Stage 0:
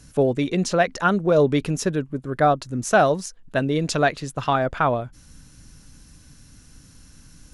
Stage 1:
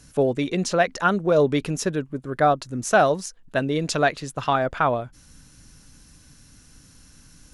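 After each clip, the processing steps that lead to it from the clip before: bass shelf 260 Hz -4 dB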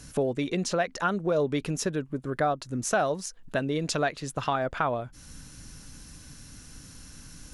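compression 2:1, threshold -36 dBFS, peak gain reduction 12.5 dB; trim +4 dB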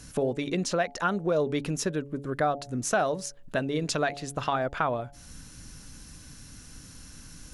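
de-hum 141.6 Hz, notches 6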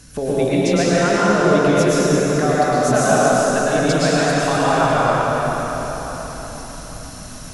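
plate-style reverb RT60 4.9 s, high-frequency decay 0.75×, pre-delay 95 ms, DRR -9.5 dB; trim +2.5 dB

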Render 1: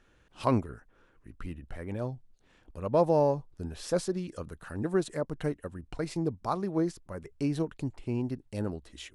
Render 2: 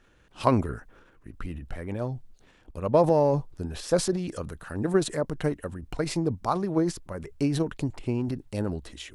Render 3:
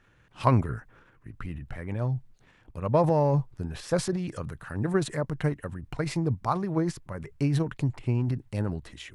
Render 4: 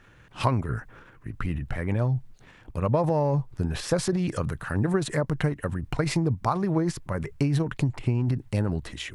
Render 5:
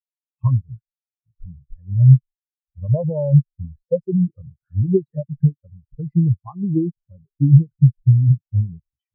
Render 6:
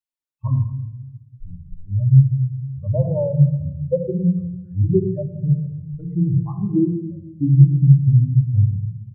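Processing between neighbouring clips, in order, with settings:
transient shaper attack +4 dB, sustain +8 dB; trim +2 dB
ten-band graphic EQ 125 Hz +11 dB, 1 kHz +4 dB, 2 kHz +6 dB; trim -5 dB
compression 6:1, threshold -28 dBFS, peak gain reduction 11.5 dB; trim +7.5 dB
spectral contrast expander 4:1; trim +6.5 dB
simulated room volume 2900 m³, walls furnished, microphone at 2.5 m; trim -2 dB

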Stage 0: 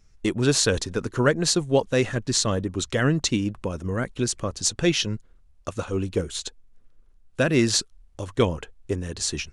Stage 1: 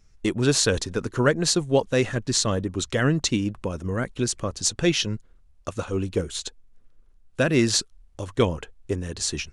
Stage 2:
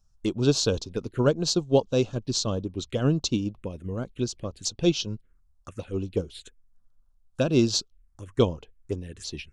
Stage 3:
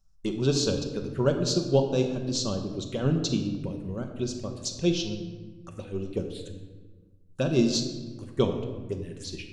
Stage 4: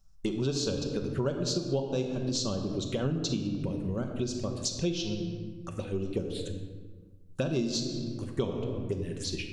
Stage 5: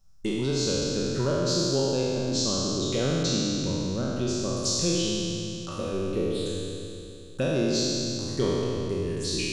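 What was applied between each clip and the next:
no audible change
touch-sensitive phaser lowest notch 350 Hz, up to 1.9 kHz, full sweep at -22.5 dBFS; upward expansion 1.5:1, over -33 dBFS; trim +1 dB
simulated room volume 1000 m³, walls mixed, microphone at 1.1 m; trim -3.5 dB
compression 4:1, threshold -32 dBFS, peak gain reduction 13.5 dB; trim +4 dB
spectral sustain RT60 2.82 s; hum notches 50/100 Hz

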